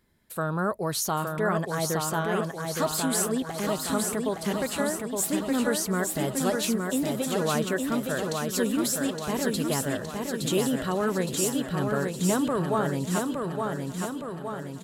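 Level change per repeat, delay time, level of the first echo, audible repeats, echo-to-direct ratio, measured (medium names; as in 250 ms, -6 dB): no regular repeats, 742 ms, -18.5 dB, 13, -2.0 dB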